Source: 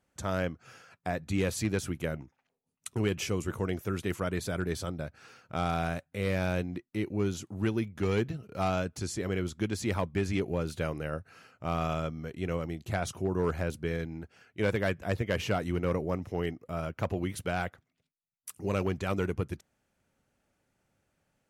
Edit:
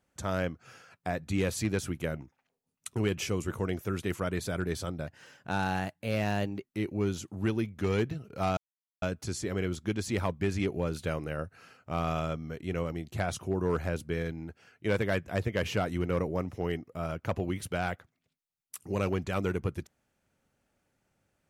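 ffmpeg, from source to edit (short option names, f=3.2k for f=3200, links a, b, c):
-filter_complex "[0:a]asplit=4[a][b][c][d];[a]atrim=end=5.074[e];[b]atrim=start=5.07:end=6.83,asetpts=PTS-STARTPTS,asetrate=49392,aresample=44100[f];[c]atrim=start=6.826:end=8.76,asetpts=PTS-STARTPTS,afade=t=out:st=1.93:d=0.004:c=hsin,apad=pad_dur=0.45[g];[d]atrim=start=8.76,asetpts=PTS-STARTPTS,afade=t=in:d=0.004:c=hsin[h];[e][f]acrossfade=d=0.004:c1=hsin:c2=hsin[i];[g][h]concat=n=2:v=0:a=1[j];[i][j]acrossfade=d=0.004:c1=hsin:c2=hsin"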